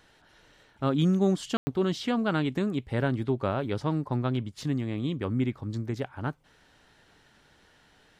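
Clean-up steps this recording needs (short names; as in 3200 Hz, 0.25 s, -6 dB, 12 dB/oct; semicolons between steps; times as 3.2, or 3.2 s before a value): room tone fill 1.57–1.67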